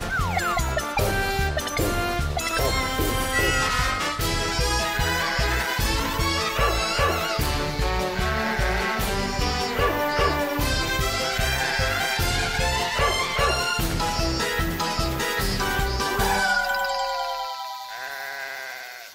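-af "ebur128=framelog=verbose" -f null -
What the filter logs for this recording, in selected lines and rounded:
Integrated loudness:
  I:         -23.7 LUFS
  Threshold: -33.7 LUFS
Loudness range:
  LRA:         1.4 LU
  Threshold: -43.4 LUFS
  LRA low:   -24.2 LUFS
  LRA high:  -22.8 LUFS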